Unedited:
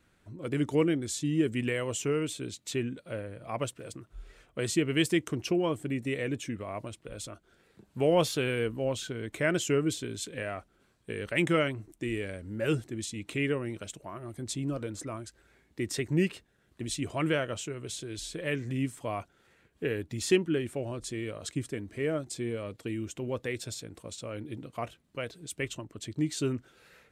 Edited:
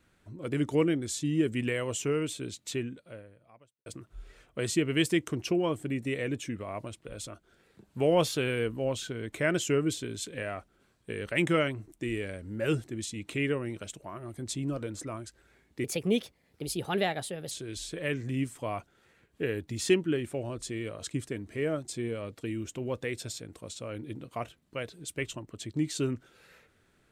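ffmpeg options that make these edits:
ffmpeg -i in.wav -filter_complex "[0:a]asplit=4[link_01][link_02][link_03][link_04];[link_01]atrim=end=3.86,asetpts=PTS-STARTPTS,afade=type=out:start_time=2.68:duration=1.18:curve=qua[link_05];[link_02]atrim=start=3.86:end=15.844,asetpts=PTS-STARTPTS,afade=type=in:duration=0.004:curve=hsin[link_06];[link_03]atrim=start=15.84:end=17.93,asetpts=PTS-STARTPTS,asetrate=55125,aresample=44100,atrim=end_sample=73735,asetpts=PTS-STARTPTS[link_07];[link_04]atrim=start=17.926[link_08];[link_05][link_06]concat=n=2:v=0:a=1[link_09];[link_09][link_07]acrossfade=duration=0.004:curve1=hsin:curve2=hsin[link_10];[link_10][link_08]acrossfade=duration=0.004:curve1=hsin:curve2=hsin" out.wav

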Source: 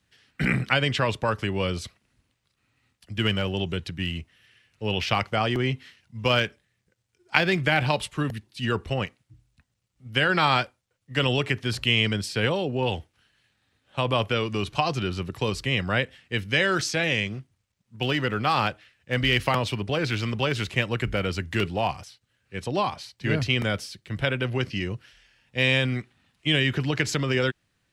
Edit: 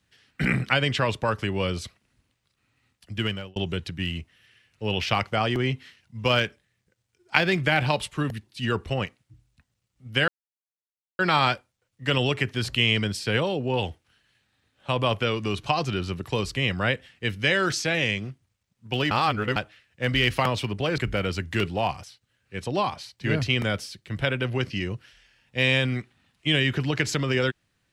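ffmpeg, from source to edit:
ffmpeg -i in.wav -filter_complex "[0:a]asplit=6[link_01][link_02][link_03][link_04][link_05][link_06];[link_01]atrim=end=3.56,asetpts=PTS-STARTPTS,afade=type=out:start_time=3.13:duration=0.43[link_07];[link_02]atrim=start=3.56:end=10.28,asetpts=PTS-STARTPTS,afade=type=in:duration=0.004:curve=hsin,afade=type=out:start_time=6.716:duration=0.004:curve=hsin,apad=pad_dur=0.91[link_08];[link_03]atrim=start=10.28:end=18.202,asetpts=PTS-STARTPTS,afade=type=in:duration=0.004:curve=hsin[link_09];[link_04]atrim=start=18.198:end=18.652,asetpts=PTS-STARTPTS,areverse[link_10];[link_05]atrim=start=18.648:end=20.072[link_11];[link_06]atrim=start=20.978[link_12];[link_07][link_08][link_09]concat=n=3:v=0:a=1[link_13];[link_13][link_10]acrossfade=duration=0.004:curve1=hsin:curve2=hsin[link_14];[link_14][link_11]acrossfade=duration=0.004:curve1=hsin:curve2=hsin[link_15];[link_15][link_12]acrossfade=duration=0.004:curve1=hsin:curve2=hsin" out.wav

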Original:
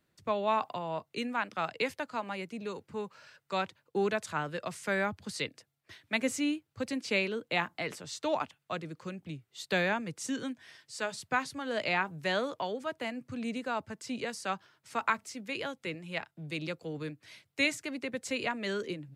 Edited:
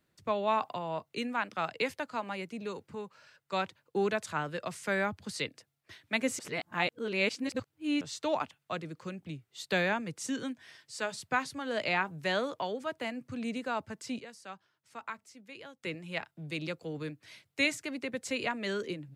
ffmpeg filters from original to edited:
ffmpeg -i in.wav -filter_complex "[0:a]asplit=7[link_01][link_02][link_03][link_04][link_05][link_06][link_07];[link_01]atrim=end=2.952[link_08];[link_02]atrim=start=2.948:end=3.532,asetpts=PTS-STARTPTS,volume=-3.5dB[link_09];[link_03]atrim=start=3.528:end=6.392[link_10];[link_04]atrim=start=6.388:end=8.012,asetpts=PTS-STARTPTS,areverse[link_11];[link_05]atrim=start=8.008:end=14.192[link_12];[link_06]atrim=start=14.188:end=15.832,asetpts=PTS-STARTPTS,volume=-11.5dB[link_13];[link_07]atrim=start=15.828[link_14];[link_08][link_09]acrossfade=duration=0.004:curve1=hsin:curve2=hsin[link_15];[link_15][link_10]acrossfade=duration=0.004:curve1=hsin:curve2=hsin[link_16];[link_16][link_11]acrossfade=duration=0.004:curve1=hsin:curve2=hsin[link_17];[link_17][link_12]acrossfade=duration=0.004:curve1=hsin:curve2=hsin[link_18];[link_18][link_13]acrossfade=duration=0.004:curve1=hsin:curve2=hsin[link_19];[link_19][link_14]acrossfade=duration=0.004:curve1=hsin:curve2=hsin" out.wav

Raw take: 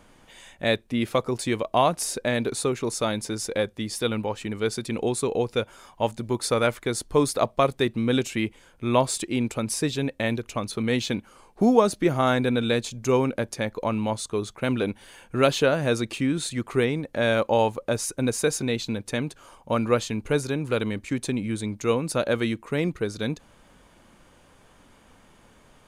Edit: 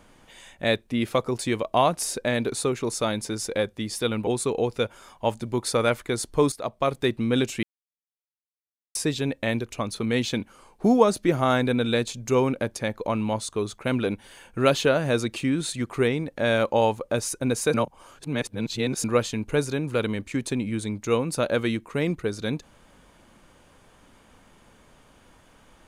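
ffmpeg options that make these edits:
ffmpeg -i in.wav -filter_complex "[0:a]asplit=7[link_01][link_02][link_03][link_04][link_05][link_06][link_07];[link_01]atrim=end=4.272[link_08];[link_02]atrim=start=5.038:end=7.29,asetpts=PTS-STARTPTS,afade=type=out:start_time=2.248:duration=0.004:curve=hsin:silence=0.237137[link_09];[link_03]atrim=start=7.29:end=8.4,asetpts=PTS-STARTPTS,afade=type=in:duration=0.55:silence=0.237137,afade=type=out:start_time=1.106:duration=0.004:curve=hsin[link_10];[link_04]atrim=start=8.4:end=9.72,asetpts=PTS-STARTPTS,volume=0[link_11];[link_05]atrim=start=9.72:end=18.512,asetpts=PTS-STARTPTS,afade=type=in:duration=0.004:curve=hsin[link_12];[link_06]atrim=start=18.508:end=19.812,asetpts=PTS-STARTPTS,areverse[link_13];[link_07]atrim=start=19.808[link_14];[link_09][link_10][link_11][link_12]concat=n=4:v=0:a=1[link_15];[link_08][link_15]acrossfade=duration=0.004:curve1=hsin:curve2=hsin[link_16];[link_16][link_13]acrossfade=duration=0.004:curve1=hsin:curve2=hsin[link_17];[link_17][link_14]acrossfade=duration=0.004:curve1=hsin:curve2=hsin" out.wav

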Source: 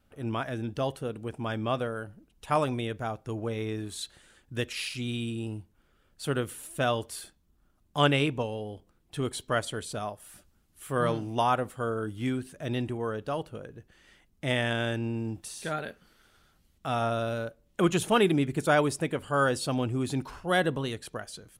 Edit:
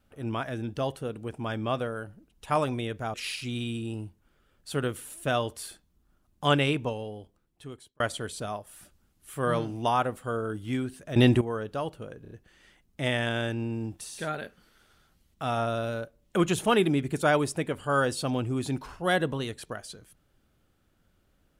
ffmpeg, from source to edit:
ffmpeg -i in.wav -filter_complex "[0:a]asplit=8[link_01][link_02][link_03][link_04][link_05][link_06][link_07][link_08];[link_01]atrim=end=3.142[link_09];[link_02]atrim=start=4.668:end=9.53,asetpts=PTS-STARTPTS,afade=type=out:start_time=3.732:duration=1.13[link_10];[link_03]atrim=start=9.53:end=12.692,asetpts=PTS-STARTPTS,afade=type=in:duration=0.004:curve=hsin[link_11];[link_04]atrim=start=12.688:end=12.942,asetpts=PTS-STARTPTS,volume=11.5dB[link_12];[link_05]atrim=start=12.938:end=13.782[link_13];[link_06]atrim=start=13.748:end=13.782[link_14];[link_07]atrim=start=13.748:end=13.782[link_15];[link_08]atrim=start=13.748[link_16];[link_10][link_11]concat=n=2:v=0:a=1[link_17];[link_09][link_17]acrossfade=duration=0.004:curve1=hsin:curve2=hsin[link_18];[link_18][link_12]acrossfade=duration=0.004:curve1=hsin:curve2=hsin[link_19];[link_19][link_13]acrossfade=duration=0.004:curve1=hsin:curve2=hsin[link_20];[link_20][link_14]acrossfade=duration=0.004:curve1=hsin:curve2=hsin[link_21];[link_21][link_15]acrossfade=duration=0.004:curve1=hsin:curve2=hsin[link_22];[link_22][link_16]acrossfade=duration=0.004:curve1=hsin:curve2=hsin" out.wav

